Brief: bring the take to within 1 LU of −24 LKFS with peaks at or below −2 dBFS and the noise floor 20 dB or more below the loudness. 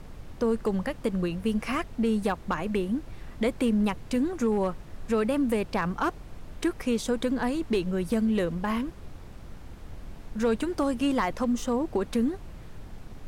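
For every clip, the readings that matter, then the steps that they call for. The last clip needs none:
share of clipped samples 0.4%; peaks flattened at −18.0 dBFS; background noise floor −44 dBFS; target noise floor −48 dBFS; integrated loudness −28.0 LKFS; sample peak −18.0 dBFS; target loudness −24.0 LKFS
→ clipped peaks rebuilt −18 dBFS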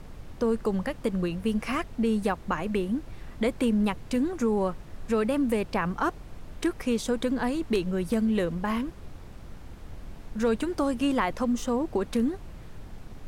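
share of clipped samples 0.0%; background noise floor −44 dBFS; target noise floor −48 dBFS
→ noise reduction from a noise print 6 dB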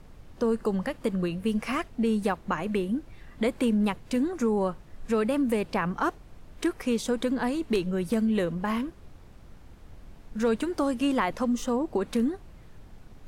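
background noise floor −50 dBFS; integrated loudness −28.0 LKFS; sample peak −11.5 dBFS; target loudness −24.0 LKFS
→ level +4 dB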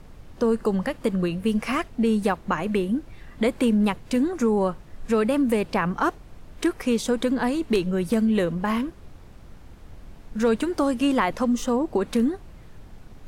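integrated loudness −24.0 LKFS; sample peak −7.5 dBFS; background noise floor −46 dBFS

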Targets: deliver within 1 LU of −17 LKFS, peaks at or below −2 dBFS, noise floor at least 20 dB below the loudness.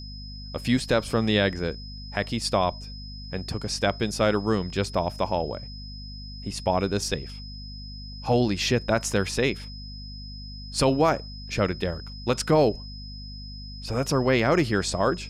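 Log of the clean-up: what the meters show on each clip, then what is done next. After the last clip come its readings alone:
mains hum 50 Hz; hum harmonics up to 250 Hz; level of the hum −37 dBFS; interfering tone 5,100 Hz; level of the tone −42 dBFS; integrated loudness −25.5 LKFS; sample peak −10.0 dBFS; target loudness −17.0 LKFS
→ hum removal 50 Hz, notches 5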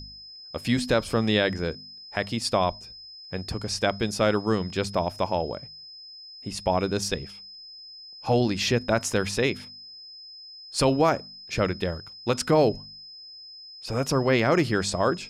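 mains hum none found; interfering tone 5,100 Hz; level of the tone −42 dBFS
→ notch filter 5,100 Hz, Q 30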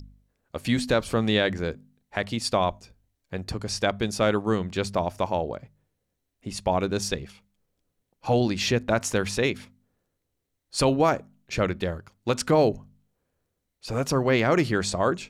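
interfering tone none found; integrated loudness −25.5 LKFS; sample peak −9.5 dBFS; target loudness −17.0 LKFS
→ level +8.5 dB
brickwall limiter −2 dBFS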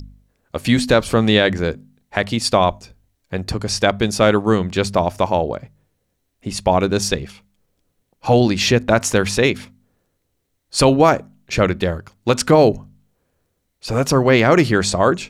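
integrated loudness −17.5 LKFS; sample peak −2.0 dBFS; background noise floor −71 dBFS

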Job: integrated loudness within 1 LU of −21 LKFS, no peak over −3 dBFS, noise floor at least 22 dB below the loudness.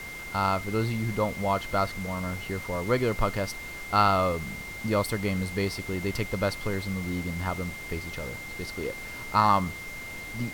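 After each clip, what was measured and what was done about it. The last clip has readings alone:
interfering tone 2,100 Hz; level of the tone −38 dBFS; background noise floor −39 dBFS; target noise floor −51 dBFS; integrated loudness −29.0 LKFS; sample peak −7.0 dBFS; target loudness −21.0 LKFS
→ notch filter 2,100 Hz, Q 30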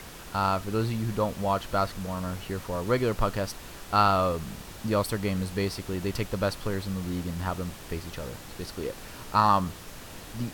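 interfering tone none found; background noise floor −44 dBFS; target noise floor −51 dBFS
→ noise reduction from a noise print 7 dB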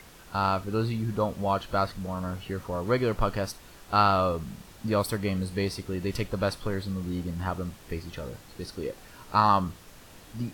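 background noise floor −50 dBFS; target noise floor −51 dBFS
→ noise reduction from a noise print 6 dB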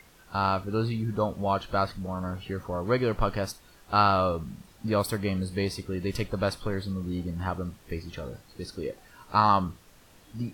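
background noise floor −56 dBFS; integrated loudness −29.0 LKFS; sample peak −7.0 dBFS; target loudness −21.0 LKFS
→ level +8 dB
brickwall limiter −3 dBFS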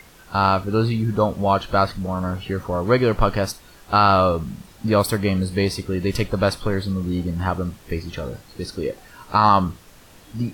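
integrated loudness −21.5 LKFS; sample peak −3.0 dBFS; background noise floor −48 dBFS

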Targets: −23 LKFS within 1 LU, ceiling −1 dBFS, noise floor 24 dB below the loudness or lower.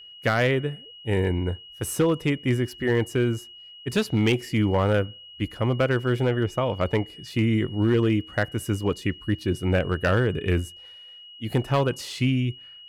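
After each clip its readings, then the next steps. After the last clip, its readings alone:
share of clipped samples 0.6%; peaks flattened at −14.5 dBFS; interfering tone 2,900 Hz; level of the tone −43 dBFS; integrated loudness −25.0 LKFS; sample peak −14.5 dBFS; target loudness −23.0 LKFS
→ clipped peaks rebuilt −14.5 dBFS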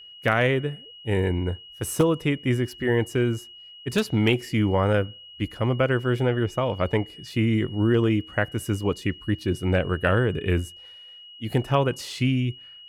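share of clipped samples 0.0%; interfering tone 2,900 Hz; level of the tone −43 dBFS
→ notch filter 2,900 Hz, Q 30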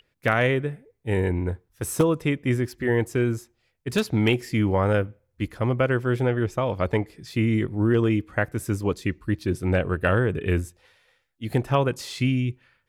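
interfering tone none found; integrated loudness −25.0 LKFS; sample peak −5.5 dBFS; target loudness −23.0 LKFS
→ level +2 dB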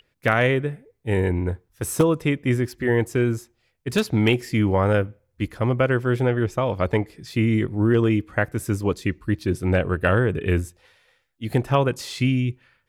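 integrated loudness −23.0 LKFS; sample peak −3.5 dBFS; background noise floor −70 dBFS

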